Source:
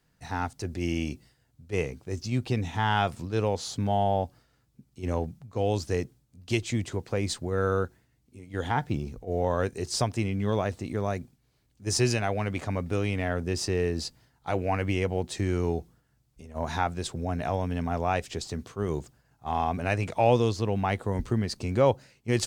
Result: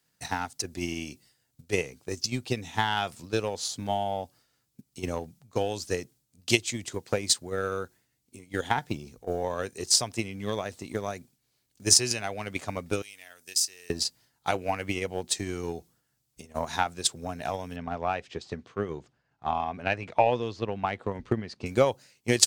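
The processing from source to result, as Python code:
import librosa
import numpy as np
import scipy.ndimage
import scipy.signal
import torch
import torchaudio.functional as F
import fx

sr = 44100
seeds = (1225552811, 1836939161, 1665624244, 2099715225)

y = fx.pre_emphasis(x, sr, coefficient=0.97, at=(13.02, 13.9))
y = fx.lowpass(y, sr, hz=2800.0, slope=12, at=(17.76, 21.66))
y = fx.highpass(y, sr, hz=170.0, slope=6)
y = fx.high_shelf(y, sr, hz=3000.0, db=11.5)
y = fx.transient(y, sr, attack_db=12, sustain_db=0)
y = y * librosa.db_to_amplitude(-6.5)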